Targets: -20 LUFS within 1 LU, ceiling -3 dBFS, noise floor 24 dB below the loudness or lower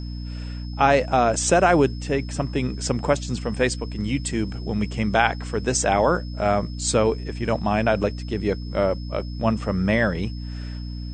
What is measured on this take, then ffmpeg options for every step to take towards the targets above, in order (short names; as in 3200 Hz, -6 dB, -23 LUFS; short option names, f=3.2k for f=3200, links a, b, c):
hum 60 Hz; harmonics up to 300 Hz; hum level -29 dBFS; steady tone 5200 Hz; tone level -45 dBFS; loudness -22.5 LUFS; peak -3.0 dBFS; loudness target -20.0 LUFS
-> -af "bandreject=f=60:t=h:w=6,bandreject=f=120:t=h:w=6,bandreject=f=180:t=h:w=6,bandreject=f=240:t=h:w=6,bandreject=f=300:t=h:w=6"
-af "bandreject=f=5.2k:w=30"
-af "volume=2.5dB,alimiter=limit=-3dB:level=0:latency=1"